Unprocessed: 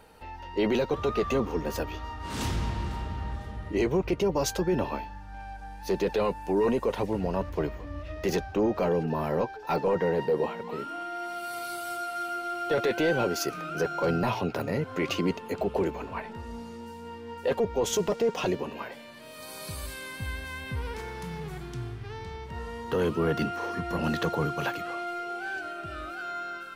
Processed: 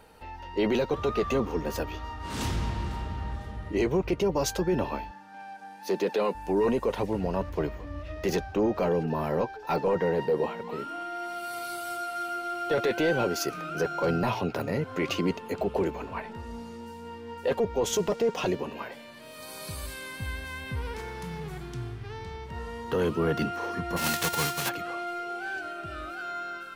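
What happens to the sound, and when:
5.11–6.35 HPF 190 Hz 24 dB/oct
23.96–24.68 spectral whitening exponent 0.3

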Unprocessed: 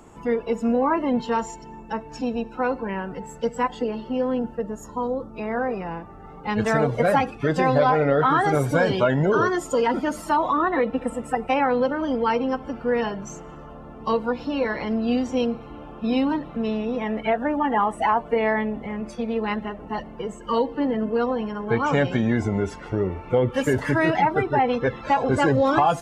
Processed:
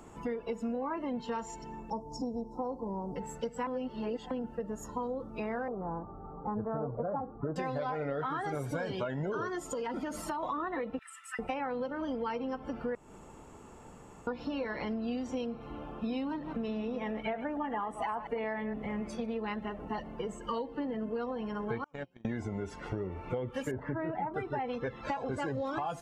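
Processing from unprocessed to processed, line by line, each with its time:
1.9–3.16 elliptic band-stop 980–5100 Hz
3.67–4.31 reverse
5.68–7.56 steep low-pass 1300 Hz 48 dB/oct
9.66–10.43 compressor 3:1, threshold -26 dBFS
10.99–11.39 steep high-pass 1300 Hz 48 dB/oct
12.95–14.27 room tone
16.3–19.26 reverse delay 0.116 s, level -12 dB
21.84–22.25 gate -17 dBFS, range -39 dB
23.71–24.34 LPF 1200 Hz
whole clip: compressor 6:1, threshold -29 dBFS; gain -3.5 dB

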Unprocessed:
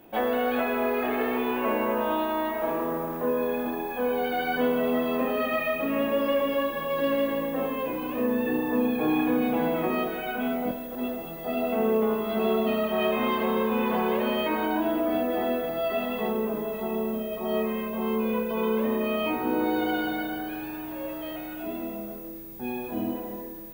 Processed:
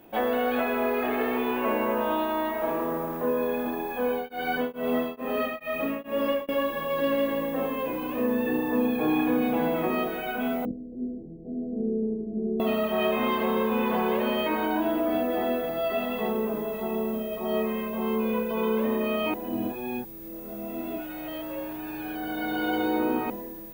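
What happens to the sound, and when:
4.08–6.49 beating tremolo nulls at 2.3 Hz
10.65–12.6 inverse Chebyshev low-pass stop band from 1300 Hz, stop band 60 dB
19.34–23.3 reverse

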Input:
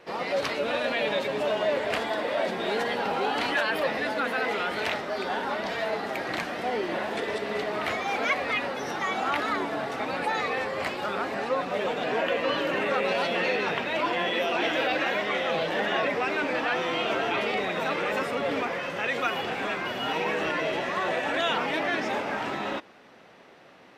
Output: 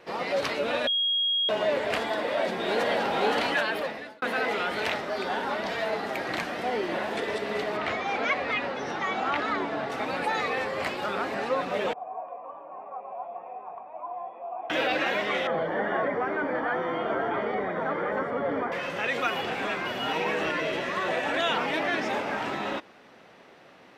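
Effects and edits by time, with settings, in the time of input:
0.87–1.49 bleep 3280 Hz -22.5 dBFS
2.16–2.87 echo throw 0.52 s, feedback 50%, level -2.5 dB
3.55–4.22 fade out
7.77–9.9 air absorption 81 m
11.93–14.7 vocal tract filter a
15.47–18.72 polynomial smoothing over 41 samples
20.5–21.09 bell 790 Hz -7 dB 0.35 oct

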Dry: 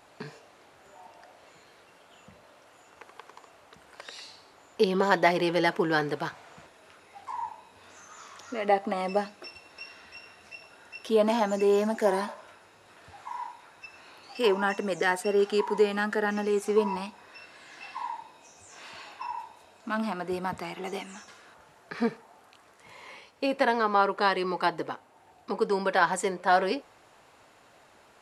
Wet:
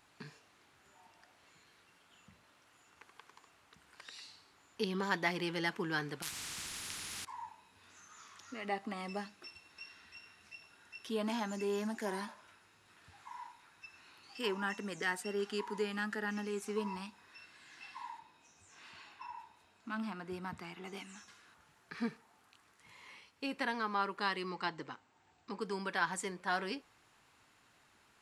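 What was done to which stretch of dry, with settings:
6.22–7.25 spectral compressor 10:1
18.19–20.97 high shelf 4500 Hz -6.5 dB
24.49–25.61 brick-wall FIR low-pass 8400 Hz
whole clip: bell 580 Hz -12 dB 1.2 oct; gain -6.5 dB

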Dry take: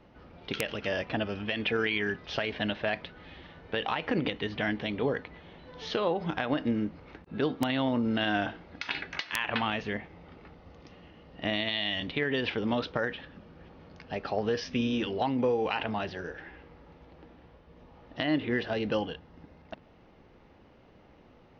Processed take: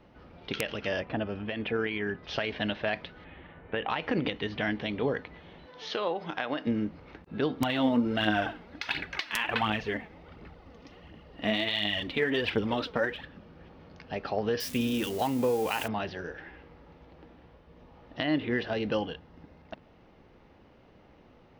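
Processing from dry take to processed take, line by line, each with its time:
1–2.23 LPF 1500 Hz 6 dB/oct
3.24–3.9 LPF 2700 Hz 24 dB/oct
5.66–6.67 HPF 440 Hz 6 dB/oct
7.57–13.26 phaser 1.4 Hz, delay 4.8 ms
14.6–15.88 switching spikes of -31 dBFS

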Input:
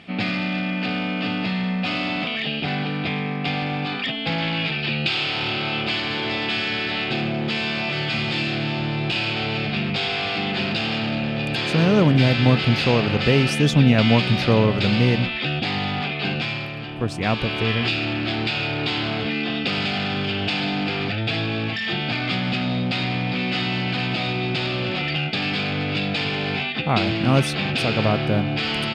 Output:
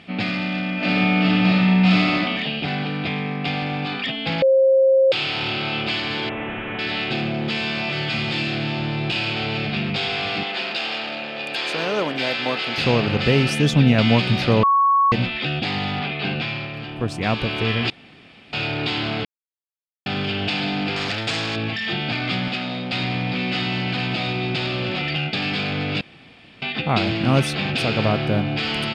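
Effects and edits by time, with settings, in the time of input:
0.75–2.15 reverb throw, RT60 1.2 s, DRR -5 dB
4.42–5.12 bleep 533 Hz -11.5 dBFS
6.29–6.79 CVSD 16 kbps
10.43–12.78 HPF 470 Hz
14.63–15.12 bleep 1110 Hz -13 dBFS
16–16.74 LPF 4800 Hz
17.9–18.53 room tone
19.25–20.06 mute
20.96–21.56 spectral compressor 2:1
22.48–22.93 HPF 330 Hz 6 dB/oct
26.01–26.62 room tone

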